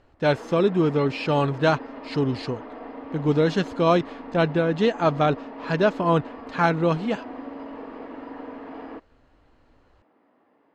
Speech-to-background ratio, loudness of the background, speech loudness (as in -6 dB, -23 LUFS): 15.0 dB, -38.5 LUFS, -23.5 LUFS